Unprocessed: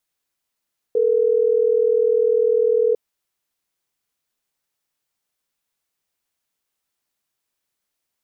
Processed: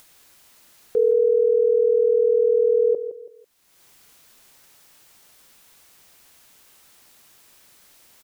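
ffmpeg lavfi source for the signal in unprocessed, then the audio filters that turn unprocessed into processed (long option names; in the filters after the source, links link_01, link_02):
-f lavfi -i "aevalsrc='0.141*(sin(2*PI*440*t)+sin(2*PI*480*t))*clip(min(mod(t,6),2-mod(t,6))/0.005,0,1)':duration=3.12:sample_rate=44100"
-filter_complex "[0:a]acompressor=mode=upward:threshold=-33dB:ratio=2.5,asplit=2[link_01][link_02];[link_02]aecho=0:1:165|330|495:0.266|0.0825|0.0256[link_03];[link_01][link_03]amix=inputs=2:normalize=0"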